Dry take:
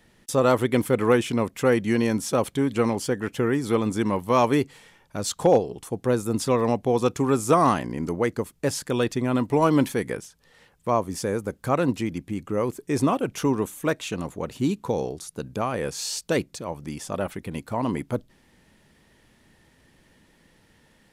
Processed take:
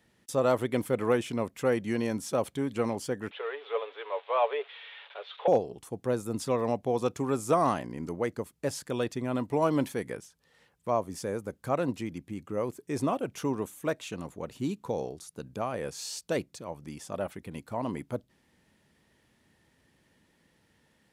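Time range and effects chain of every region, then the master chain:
3.31–5.48 s: zero-crossing glitches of -21 dBFS + Chebyshev band-pass 430–3600 Hz, order 5 + comb 7.1 ms, depth 34%
whole clip: dynamic bell 630 Hz, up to +5 dB, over -33 dBFS, Q 2.3; high-pass 56 Hz; trim -8 dB

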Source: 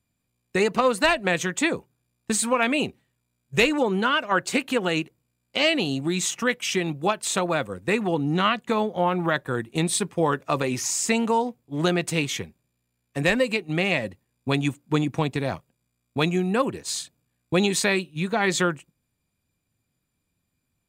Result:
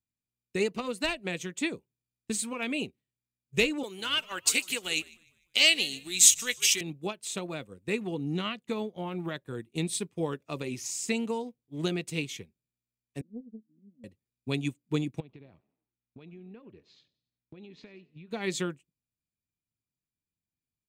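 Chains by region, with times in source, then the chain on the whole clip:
3.83–6.81 s: tilt EQ +4.5 dB/octave + frequency-shifting echo 150 ms, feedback 46%, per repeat -90 Hz, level -16 dB
13.21–14.04 s: Butterworth band-pass 230 Hz, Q 5.8 + loudspeaker Doppler distortion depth 0.56 ms
15.20–18.31 s: Gaussian low-pass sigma 2.6 samples + compression 10:1, threshold -31 dBFS + frequency-shifting echo 91 ms, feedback 50%, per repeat +46 Hz, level -20 dB
whole clip: high-order bell 1.1 kHz -8 dB; band-stop 520 Hz, Q 12; upward expansion 1.5:1, over -45 dBFS; trim -2 dB

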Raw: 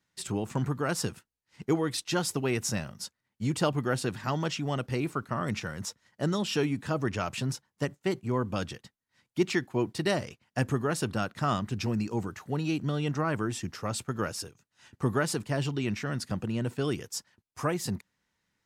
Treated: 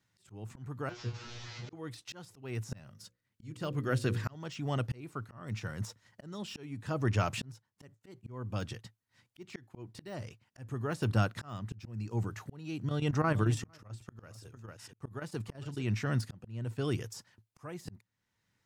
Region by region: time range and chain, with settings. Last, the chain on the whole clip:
0.89–1.73 s: one-bit delta coder 32 kbps, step -31.5 dBFS + feedback comb 120 Hz, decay 0.25 s, mix 100%
2.90–4.35 s: peaking EQ 830 Hz -8.5 dB 0.5 oct + hum notches 60/120/180/240/300/360/420/480/540 Hz
12.80–15.83 s: square tremolo 9.1 Hz, depth 65%, duty 80% + delay 452 ms -15 dB
whole clip: de-esser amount 90%; peaking EQ 110 Hz +12 dB 0.35 oct; slow attack 678 ms

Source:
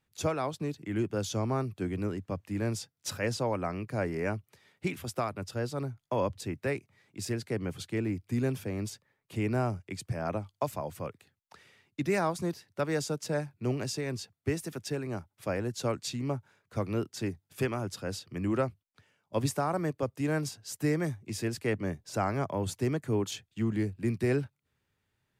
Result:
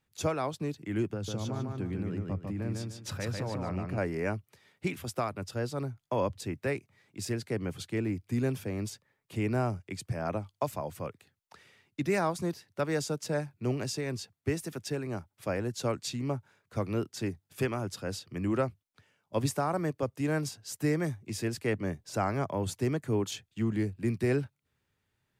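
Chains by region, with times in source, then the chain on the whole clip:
1.13–3.98 s: tone controls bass +6 dB, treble -7 dB + compression, threshold -31 dBFS + feedback delay 148 ms, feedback 30%, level -3.5 dB
whole clip: none

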